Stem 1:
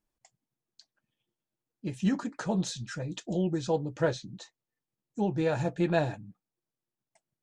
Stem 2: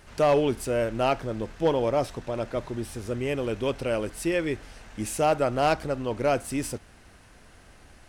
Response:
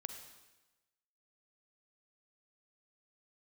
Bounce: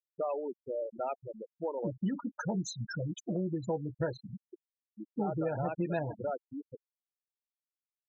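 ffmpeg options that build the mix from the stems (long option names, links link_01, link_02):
-filter_complex "[0:a]highshelf=frequency=7900:gain=8.5,volume=2.5dB[link_01];[1:a]highshelf=frequency=5700:gain=-9.5,acrossover=split=460[link_02][link_03];[link_02]acompressor=threshold=-38dB:ratio=2.5[link_04];[link_04][link_03]amix=inputs=2:normalize=0,volume=-5.5dB,asplit=3[link_05][link_06][link_07];[link_05]atrim=end=1.91,asetpts=PTS-STARTPTS,afade=type=out:start_time=1.906:duration=0.004:curve=hsin[link_08];[link_06]atrim=start=1.91:end=4.53,asetpts=PTS-STARTPTS,volume=0[link_09];[link_07]atrim=start=4.53,asetpts=PTS-STARTPTS,afade=type=in:duration=0.004:curve=hsin[link_10];[link_08][link_09][link_10]concat=n=3:v=0:a=1[link_11];[link_01][link_11]amix=inputs=2:normalize=0,afftfilt=real='re*gte(hypot(re,im),0.0631)':imag='im*gte(hypot(re,im),0.0631)':win_size=1024:overlap=0.75,acompressor=threshold=-32dB:ratio=3"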